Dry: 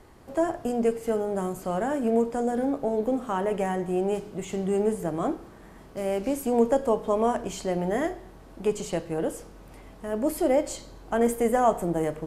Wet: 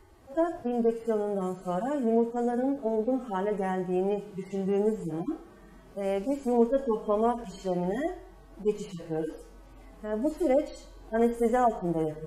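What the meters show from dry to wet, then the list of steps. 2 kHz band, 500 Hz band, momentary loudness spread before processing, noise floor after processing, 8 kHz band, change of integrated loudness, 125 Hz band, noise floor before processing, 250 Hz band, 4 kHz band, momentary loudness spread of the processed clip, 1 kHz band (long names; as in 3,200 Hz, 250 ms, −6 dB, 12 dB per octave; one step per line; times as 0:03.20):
−4.5 dB, −2.0 dB, 9 LU, −52 dBFS, below −10 dB, −2.0 dB, −2.0 dB, −48 dBFS, −1.5 dB, can't be measured, 10 LU, −3.0 dB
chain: harmonic-percussive split with one part muted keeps harmonic
level −1.5 dB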